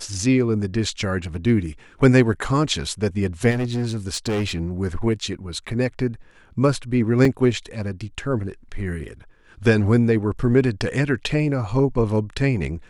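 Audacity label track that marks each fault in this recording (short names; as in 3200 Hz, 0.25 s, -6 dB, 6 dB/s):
3.500000	4.580000	clipped -19.5 dBFS
7.250000	7.250000	gap 2.8 ms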